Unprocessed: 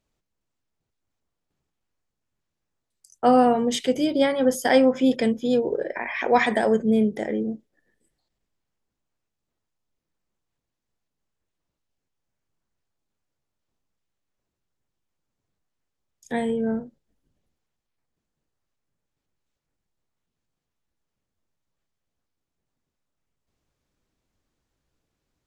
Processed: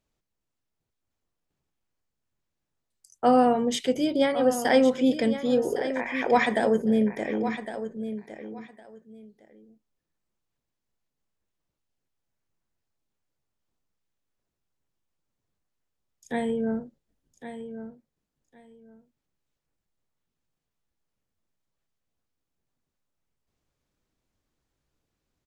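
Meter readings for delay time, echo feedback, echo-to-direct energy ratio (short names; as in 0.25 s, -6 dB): 1.109 s, 18%, -11.0 dB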